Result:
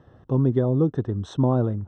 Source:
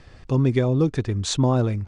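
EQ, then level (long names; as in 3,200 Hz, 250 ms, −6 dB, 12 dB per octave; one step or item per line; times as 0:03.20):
moving average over 19 samples
high-pass filter 100 Hz
0.0 dB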